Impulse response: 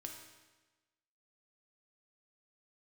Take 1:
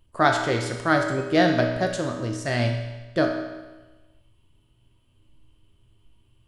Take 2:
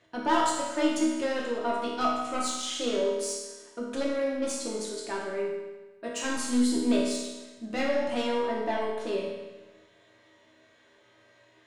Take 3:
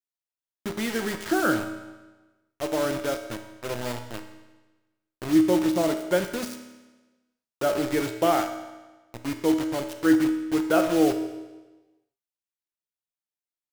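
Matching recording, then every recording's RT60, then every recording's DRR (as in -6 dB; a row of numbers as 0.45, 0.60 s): 1; 1.2, 1.2, 1.2 s; 1.5, -5.0, 5.5 dB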